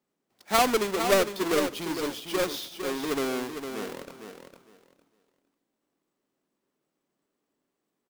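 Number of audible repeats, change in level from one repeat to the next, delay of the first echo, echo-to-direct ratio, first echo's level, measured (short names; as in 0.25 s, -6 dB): 2, -14.0 dB, 0.456 s, -8.0 dB, -8.0 dB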